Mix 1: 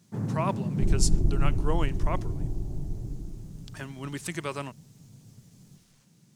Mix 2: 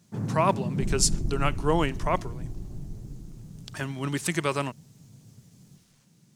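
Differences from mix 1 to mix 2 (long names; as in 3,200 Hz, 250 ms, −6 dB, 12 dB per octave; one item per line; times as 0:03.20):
speech +6.5 dB
second sound −6.0 dB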